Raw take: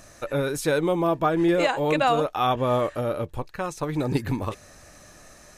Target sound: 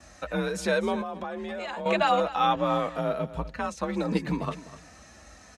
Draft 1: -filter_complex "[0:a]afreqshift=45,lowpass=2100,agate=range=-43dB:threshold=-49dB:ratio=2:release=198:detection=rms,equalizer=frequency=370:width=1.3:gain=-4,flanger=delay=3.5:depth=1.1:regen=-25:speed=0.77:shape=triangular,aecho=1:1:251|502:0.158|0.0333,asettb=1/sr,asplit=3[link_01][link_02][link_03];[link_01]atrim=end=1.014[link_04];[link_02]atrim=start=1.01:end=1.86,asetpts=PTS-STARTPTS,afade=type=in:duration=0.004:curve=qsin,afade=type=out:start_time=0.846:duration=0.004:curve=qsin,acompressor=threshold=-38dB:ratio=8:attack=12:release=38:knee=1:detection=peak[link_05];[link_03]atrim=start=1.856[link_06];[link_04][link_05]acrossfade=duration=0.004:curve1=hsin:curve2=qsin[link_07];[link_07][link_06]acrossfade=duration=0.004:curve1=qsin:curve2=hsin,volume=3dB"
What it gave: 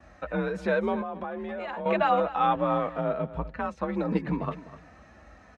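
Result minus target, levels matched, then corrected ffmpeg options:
8,000 Hz band −18.5 dB
-filter_complex "[0:a]afreqshift=45,lowpass=7000,agate=range=-43dB:threshold=-49dB:ratio=2:release=198:detection=rms,equalizer=frequency=370:width=1.3:gain=-4,flanger=delay=3.5:depth=1.1:regen=-25:speed=0.77:shape=triangular,aecho=1:1:251|502:0.158|0.0333,asettb=1/sr,asplit=3[link_01][link_02][link_03];[link_01]atrim=end=1.014[link_04];[link_02]atrim=start=1.01:end=1.86,asetpts=PTS-STARTPTS,afade=type=in:duration=0.004:curve=qsin,afade=type=out:start_time=0.846:duration=0.004:curve=qsin,acompressor=threshold=-38dB:ratio=8:attack=12:release=38:knee=1:detection=peak[link_05];[link_03]atrim=start=1.856[link_06];[link_04][link_05]acrossfade=duration=0.004:curve1=hsin:curve2=qsin[link_07];[link_07][link_06]acrossfade=duration=0.004:curve1=qsin:curve2=hsin,volume=3dB"

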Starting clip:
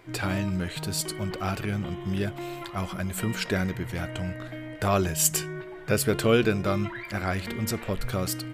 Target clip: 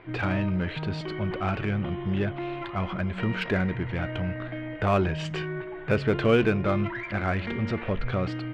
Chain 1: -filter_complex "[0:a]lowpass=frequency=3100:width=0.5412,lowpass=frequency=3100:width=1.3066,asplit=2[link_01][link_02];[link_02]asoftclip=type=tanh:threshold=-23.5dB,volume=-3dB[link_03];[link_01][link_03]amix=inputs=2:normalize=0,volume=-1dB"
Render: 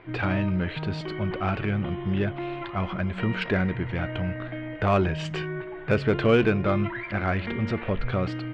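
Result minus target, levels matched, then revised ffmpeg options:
soft clipping: distortion −5 dB
-filter_complex "[0:a]lowpass=frequency=3100:width=0.5412,lowpass=frequency=3100:width=1.3066,asplit=2[link_01][link_02];[link_02]asoftclip=type=tanh:threshold=-30.5dB,volume=-3dB[link_03];[link_01][link_03]amix=inputs=2:normalize=0,volume=-1dB"

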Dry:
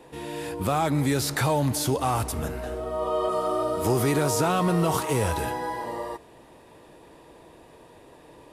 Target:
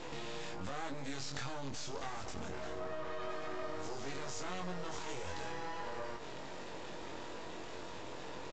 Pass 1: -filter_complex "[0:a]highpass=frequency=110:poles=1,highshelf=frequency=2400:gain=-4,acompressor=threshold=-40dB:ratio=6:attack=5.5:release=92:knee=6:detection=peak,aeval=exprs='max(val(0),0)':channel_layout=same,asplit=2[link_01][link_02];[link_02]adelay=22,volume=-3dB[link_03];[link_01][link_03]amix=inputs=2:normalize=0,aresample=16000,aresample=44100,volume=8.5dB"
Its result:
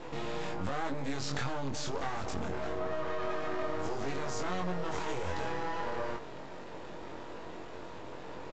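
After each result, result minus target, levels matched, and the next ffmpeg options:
downward compressor: peak gain reduction −7 dB; 4,000 Hz band −3.5 dB
-filter_complex "[0:a]highpass=frequency=110:poles=1,highshelf=frequency=2400:gain=-4,acompressor=threshold=-48dB:ratio=6:attack=5.5:release=92:knee=6:detection=peak,aeval=exprs='max(val(0),0)':channel_layout=same,asplit=2[link_01][link_02];[link_02]adelay=22,volume=-3dB[link_03];[link_01][link_03]amix=inputs=2:normalize=0,aresample=16000,aresample=44100,volume=8.5dB"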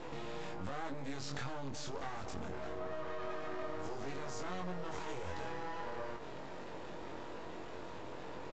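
4,000 Hz band −3.5 dB
-filter_complex "[0:a]highpass=frequency=110:poles=1,highshelf=frequency=2400:gain=6.5,acompressor=threshold=-48dB:ratio=6:attack=5.5:release=92:knee=6:detection=peak,aeval=exprs='max(val(0),0)':channel_layout=same,asplit=2[link_01][link_02];[link_02]adelay=22,volume=-3dB[link_03];[link_01][link_03]amix=inputs=2:normalize=0,aresample=16000,aresample=44100,volume=8.5dB"

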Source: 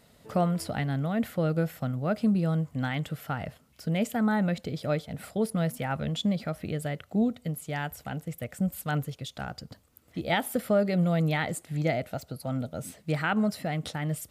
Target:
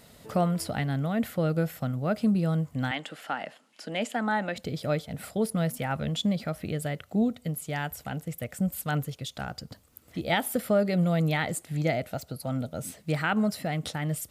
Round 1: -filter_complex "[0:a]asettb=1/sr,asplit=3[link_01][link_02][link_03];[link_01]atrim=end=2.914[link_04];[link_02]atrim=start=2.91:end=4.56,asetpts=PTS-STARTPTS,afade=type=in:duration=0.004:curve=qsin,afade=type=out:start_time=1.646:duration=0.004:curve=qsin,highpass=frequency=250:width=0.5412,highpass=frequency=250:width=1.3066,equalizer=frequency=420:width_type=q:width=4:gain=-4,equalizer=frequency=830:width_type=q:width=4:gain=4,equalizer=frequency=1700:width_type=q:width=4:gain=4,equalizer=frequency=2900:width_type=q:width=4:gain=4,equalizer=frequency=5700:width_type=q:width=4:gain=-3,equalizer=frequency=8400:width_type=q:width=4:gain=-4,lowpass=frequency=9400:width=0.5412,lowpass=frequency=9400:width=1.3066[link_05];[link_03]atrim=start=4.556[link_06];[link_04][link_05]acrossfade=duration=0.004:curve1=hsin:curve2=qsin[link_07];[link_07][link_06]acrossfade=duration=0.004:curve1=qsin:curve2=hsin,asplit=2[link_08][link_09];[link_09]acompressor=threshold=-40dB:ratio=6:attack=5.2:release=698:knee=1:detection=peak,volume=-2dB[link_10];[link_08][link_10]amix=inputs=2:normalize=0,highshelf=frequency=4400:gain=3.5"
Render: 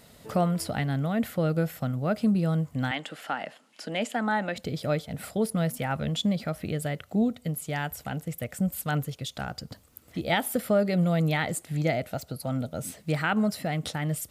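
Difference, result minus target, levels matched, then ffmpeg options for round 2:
downward compressor: peak gain reduction −9 dB
-filter_complex "[0:a]asettb=1/sr,asplit=3[link_01][link_02][link_03];[link_01]atrim=end=2.914[link_04];[link_02]atrim=start=2.91:end=4.56,asetpts=PTS-STARTPTS,afade=type=in:duration=0.004:curve=qsin,afade=type=out:start_time=1.646:duration=0.004:curve=qsin,highpass=frequency=250:width=0.5412,highpass=frequency=250:width=1.3066,equalizer=frequency=420:width_type=q:width=4:gain=-4,equalizer=frequency=830:width_type=q:width=4:gain=4,equalizer=frequency=1700:width_type=q:width=4:gain=4,equalizer=frequency=2900:width_type=q:width=4:gain=4,equalizer=frequency=5700:width_type=q:width=4:gain=-3,equalizer=frequency=8400:width_type=q:width=4:gain=-4,lowpass=frequency=9400:width=0.5412,lowpass=frequency=9400:width=1.3066[link_05];[link_03]atrim=start=4.556[link_06];[link_04][link_05]acrossfade=duration=0.004:curve1=hsin:curve2=qsin[link_07];[link_07][link_06]acrossfade=duration=0.004:curve1=qsin:curve2=hsin,asplit=2[link_08][link_09];[link_09]acompressor=threshold=-51dB:ratio=6:attack=5.2:release=698:knee=1:detection=peak,volume=-2dB[link_10];[link_08][link_10]amix=inputs=2:normalize=0,highshelf=frequency=4400:gain=3.5"

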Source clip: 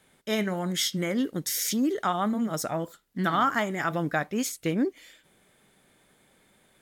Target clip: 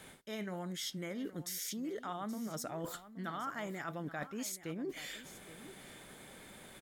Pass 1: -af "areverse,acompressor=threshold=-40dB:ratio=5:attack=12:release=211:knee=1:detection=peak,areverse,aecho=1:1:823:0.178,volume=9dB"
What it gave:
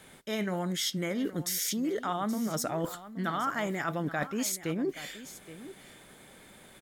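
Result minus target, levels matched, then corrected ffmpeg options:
downward compressor: peak gain reduction −9 dB
-af "areverse,acompressor=threshold=-51.5dB:ratio=5:attack=12:release=211:knee=1:detection=peak,areverse,aecho=1:1:823:0.178,volume=9dB"

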